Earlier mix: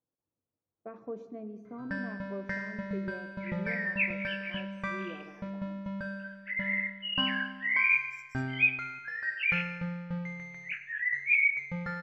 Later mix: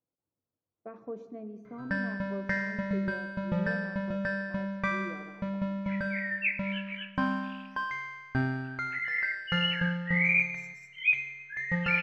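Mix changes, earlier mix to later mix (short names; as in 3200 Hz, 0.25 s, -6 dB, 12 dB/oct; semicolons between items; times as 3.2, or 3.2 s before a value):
first sound +5.0 dB; second sound: entry +2.45 s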